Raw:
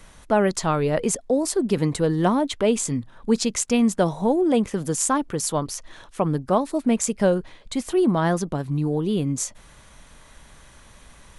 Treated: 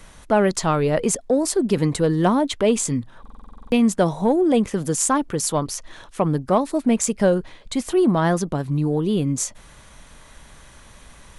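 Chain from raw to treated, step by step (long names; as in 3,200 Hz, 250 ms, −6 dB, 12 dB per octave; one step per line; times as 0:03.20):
in parallel at −9 dB: soft clipping −16.5 dBFS, distortion −14 dB
on the sum: buffer that repeats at 0:03.21, samples 2,048, times 10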